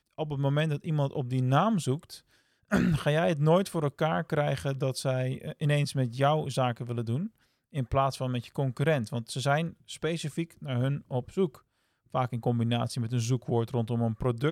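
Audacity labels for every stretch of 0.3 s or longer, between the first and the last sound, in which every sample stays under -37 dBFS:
2.160000	2.720000	silence
7.270000	7.750000	silence
11.550000	12.140000	silence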